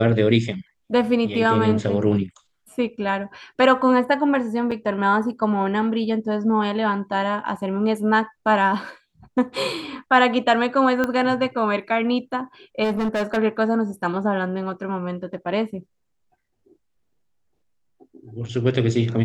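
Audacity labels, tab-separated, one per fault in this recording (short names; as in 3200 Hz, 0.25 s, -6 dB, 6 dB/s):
4.710000	4.720000	gap 5.7 ms
11.040000	11.040000	pop -10 dBFS
12.830000	13.380000	clipped -19 dBFS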